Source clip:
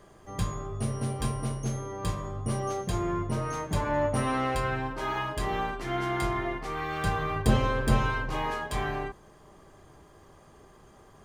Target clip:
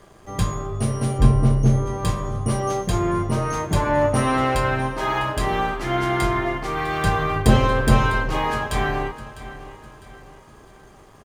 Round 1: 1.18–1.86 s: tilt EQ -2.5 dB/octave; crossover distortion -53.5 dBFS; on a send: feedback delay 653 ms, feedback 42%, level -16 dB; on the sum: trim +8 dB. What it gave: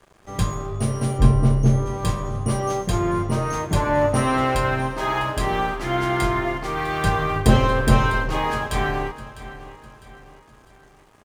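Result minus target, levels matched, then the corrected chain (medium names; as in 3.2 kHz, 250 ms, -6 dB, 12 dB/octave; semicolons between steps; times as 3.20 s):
crossover distortion: distortion +8 dB
1.18–1.86 s: tilt EQ -2.5 dB/octave; crossover distortion -62.5 dBFS; on a send: feedback delay 653 ms, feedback 42%, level -16 dB; on the sum: trim +8 dB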